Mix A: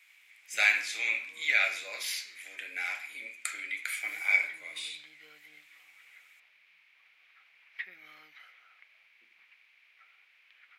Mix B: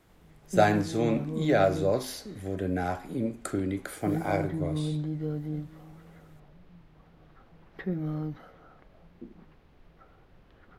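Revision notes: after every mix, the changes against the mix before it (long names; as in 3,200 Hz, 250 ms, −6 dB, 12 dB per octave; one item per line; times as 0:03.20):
speech: send −10.5 dB
master: remove high-pass with resonance 2,300 Hz, resonance Q 6.6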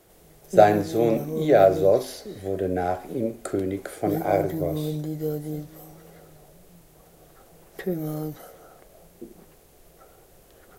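background: remove high-frequency loss of the air 330 metres
master: add flat-topped bell 510 Hz +8 dB 1.3 octaves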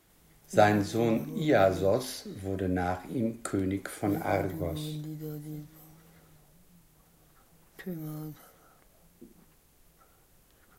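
background −7.0 dB
master: add flat-topped bell 510 Hz −8 dB 1.3 octaves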